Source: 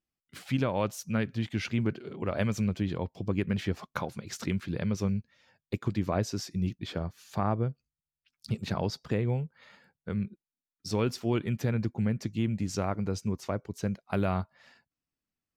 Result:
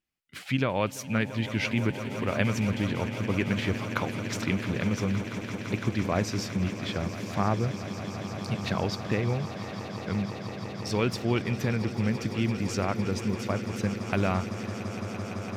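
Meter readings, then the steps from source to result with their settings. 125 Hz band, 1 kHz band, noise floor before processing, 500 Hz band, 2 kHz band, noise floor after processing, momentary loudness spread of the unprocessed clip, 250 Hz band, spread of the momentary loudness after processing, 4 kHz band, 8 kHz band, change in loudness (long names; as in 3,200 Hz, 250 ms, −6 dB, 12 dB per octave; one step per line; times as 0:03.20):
+2.0 dB, +4.0 dB, below −85 dBFS, +2.5 dB, +7.5 dB, −38 dBFS, 7 LU, +2.5 dB, 8 LU, +5.5 dB, +3.5 dB, +2.5 dB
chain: parametric band 2,300 Hz +6.5 dB 1.4 octaves
on a send: echo that builds up and dies away 169 ms, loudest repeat 8, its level −15.5 dB
on the sum: level +1 dB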